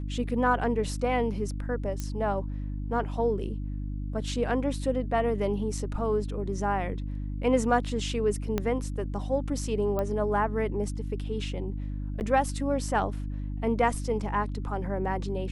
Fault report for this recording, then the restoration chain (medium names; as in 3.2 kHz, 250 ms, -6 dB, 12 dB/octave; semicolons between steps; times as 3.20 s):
hum 50 Hz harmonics 6 -33 dBFS
2.00 s: pop -19 dBFS
8.58 s: pop -14 dBFS
9.99 s: pop -18 dBFS
12.20–12.21 s: dropout 9.5 ms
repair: de-click; de-hum 50 Hz, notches 6; interpolate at 12.20 s, 9.5 ms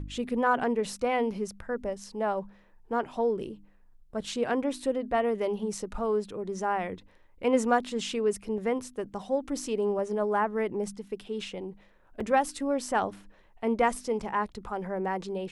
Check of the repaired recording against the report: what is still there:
2.00 s: pop
8.58 s: pop